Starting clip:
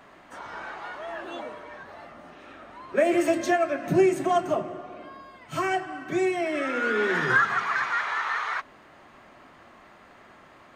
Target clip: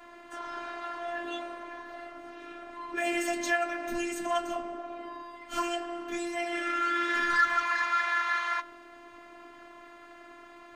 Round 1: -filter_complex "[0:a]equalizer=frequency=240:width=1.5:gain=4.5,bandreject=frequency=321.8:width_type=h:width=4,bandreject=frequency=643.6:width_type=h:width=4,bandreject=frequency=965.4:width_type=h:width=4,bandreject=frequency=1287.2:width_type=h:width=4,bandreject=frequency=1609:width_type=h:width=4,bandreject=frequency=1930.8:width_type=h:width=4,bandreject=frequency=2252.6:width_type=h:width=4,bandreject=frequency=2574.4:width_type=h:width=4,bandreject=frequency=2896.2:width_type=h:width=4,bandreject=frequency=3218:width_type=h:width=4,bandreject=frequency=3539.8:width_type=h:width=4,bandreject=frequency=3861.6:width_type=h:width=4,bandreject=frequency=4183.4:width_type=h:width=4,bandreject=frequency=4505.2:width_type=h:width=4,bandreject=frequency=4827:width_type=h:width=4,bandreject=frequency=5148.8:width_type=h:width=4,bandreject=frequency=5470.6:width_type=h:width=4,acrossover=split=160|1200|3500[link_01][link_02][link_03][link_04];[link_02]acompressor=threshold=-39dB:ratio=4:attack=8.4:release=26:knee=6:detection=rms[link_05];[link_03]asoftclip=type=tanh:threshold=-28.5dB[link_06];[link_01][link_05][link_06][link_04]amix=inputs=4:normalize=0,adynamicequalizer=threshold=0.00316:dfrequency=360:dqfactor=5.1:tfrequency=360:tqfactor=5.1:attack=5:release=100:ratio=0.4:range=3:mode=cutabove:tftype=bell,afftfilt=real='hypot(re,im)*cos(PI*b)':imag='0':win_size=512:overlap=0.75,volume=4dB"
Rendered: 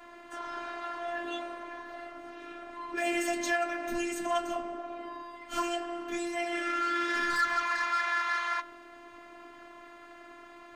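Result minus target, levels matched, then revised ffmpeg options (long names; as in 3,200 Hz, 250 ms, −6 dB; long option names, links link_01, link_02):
soft clipping: distortion +10 dB
-filter_complex "[0:a]equalizer=frequency=240:width=1.5:gain=4.5,bandreject=frequency=321.8:width_type=h:width=4,bandreject=frequency=643.6:width_type=h:width=4,bandreject=frequency=965.4:width_type=h:width=4,bandreject=frequency=1287.2:width_type=h:width=4,bandreject=frequency=1609:width_type=h:width=4,bandreject=frequency=1930.8:width_type=h:width=4,bandreject=frequency=2252.6:width_type=h:width=4,bandreject=frequency=2574.4:width_type=h:width=4,bandreject=frequency=2896.2:width_type=h:width=4,bandreject=frequency=3218:width_type=h:width=4,bandreject=frequency=3539.8:width_type=h:width=4,bandreject=frequency=3861.6:width_type=h:width=4,bandreject=frequency=4183.4:width_type=h:width=4,bandreject=frequency=4505.2:width_type=h:width=4,bandreject=frequency=4827:width_type=h:width=4,bandreject=frequency=5148.8:width_type=h:width=4,bandreject=frequency=5470.6:width_type=h:width=4,acrossover=split=160|1200|3500[link_01][link_02][link_03][link_04];[link_02]acompressor=threshold=-39dB:ratio=4:attack=8.4:release=26:knee=6:detection=rms[link_05];[link_03]asoftclip=type=tanh:threshold=-19dB[link_06];[link_01][link_05][link_06][link_04]amix=inputs=4:normalize=0,adynamicequalizer=threshold=0.00316:dfrequency=360:dqfactor=5.1:tfrequency=360:tqfactor=5.1:attack=5:release=100:ratio=0.4:range=3:mode=cutabove:tftype=bell,afftfilt=real='hypot(re,im)*cos(PI*b)':imag='0':win_size=512:overlap=0.75,volume=4dB"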